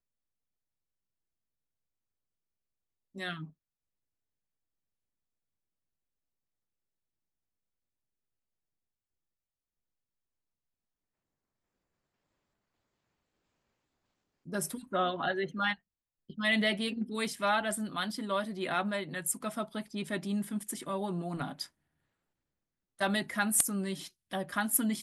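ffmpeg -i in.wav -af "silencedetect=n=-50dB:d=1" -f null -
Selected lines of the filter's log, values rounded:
silence_start: 0.00
silence_end: 3.15 | silence_duration: 3.15
silence_start: 3.50
silence_end: 14.46 | silence_duration: 10.96
silence_start: 21.67
silence_end: 22.99 | silence_duration: 1.32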